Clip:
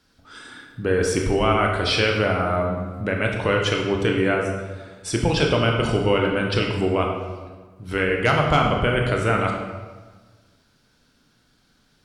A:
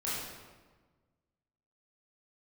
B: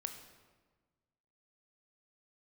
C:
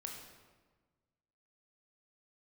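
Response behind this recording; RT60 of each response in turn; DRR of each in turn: C; 1.4, 1.4, 1.4 seconds; −9.0, 6.0, 0.5 decibels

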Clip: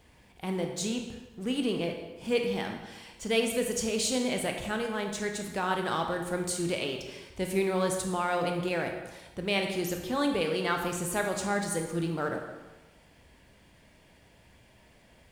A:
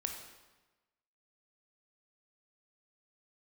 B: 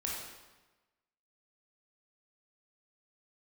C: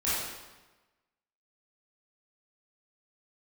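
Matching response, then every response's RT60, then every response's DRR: A; 1.2, 1.2, 1.2 seconds; 3.0, −4.0, −11.0 decibels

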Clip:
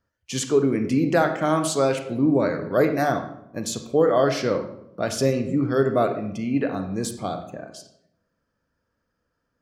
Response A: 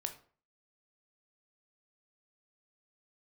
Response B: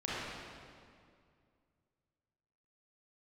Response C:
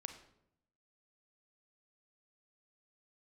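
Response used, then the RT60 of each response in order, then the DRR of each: C; 0.45, 2.2, 0.75 seconds; 5.5, −8.5, 6.5 decibels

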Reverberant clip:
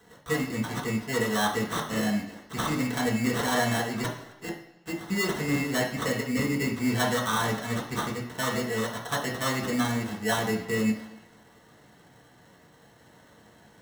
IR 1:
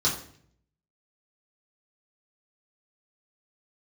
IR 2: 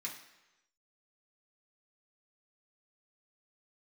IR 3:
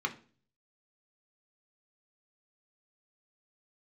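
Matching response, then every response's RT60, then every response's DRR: 2; 0.60, 1.0, 0.40 seconds; −6.5, −5.0, 3.0 decibels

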